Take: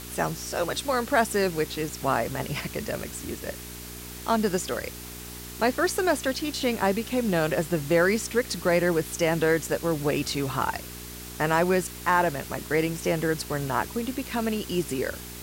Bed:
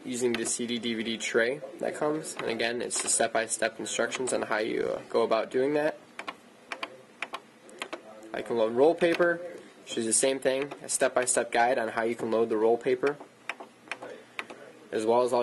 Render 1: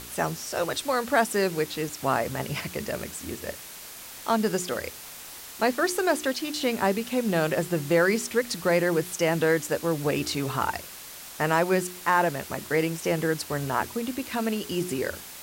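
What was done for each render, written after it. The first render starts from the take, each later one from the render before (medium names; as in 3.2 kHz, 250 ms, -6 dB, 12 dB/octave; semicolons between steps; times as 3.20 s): de-hum 60 Hz, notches 7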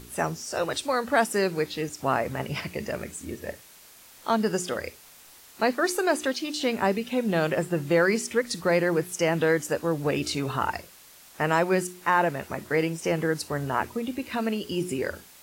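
noise print and reduce 9 dB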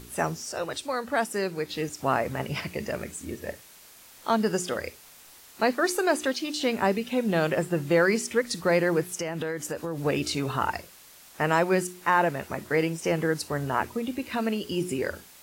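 0.52–1.69 s: gain -4 dB; 9.13–9.98 s: compression, threshold -27 dBFS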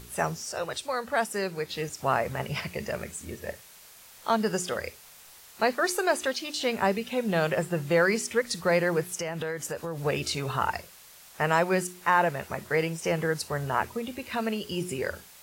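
peaking EQ 290 Hz -9.5 dB 0.51 oct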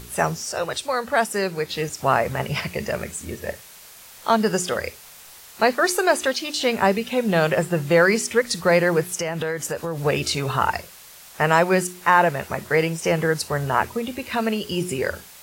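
trim +6.5 dB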